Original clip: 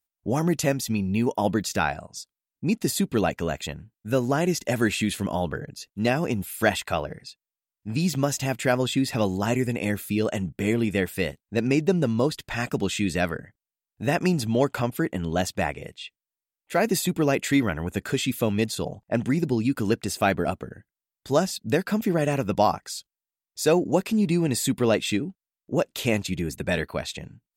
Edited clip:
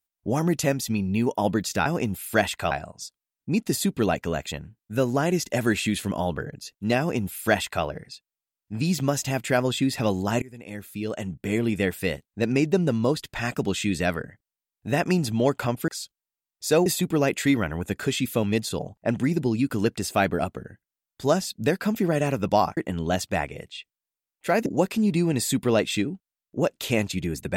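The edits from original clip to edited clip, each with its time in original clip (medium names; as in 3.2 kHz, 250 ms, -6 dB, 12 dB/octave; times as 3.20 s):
6.14–6.99 s: copy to 1.86 s
9.57–10.89 s: fade in, from -23.5 dB
15.03–16.92 s: swap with 22.83–23.81 s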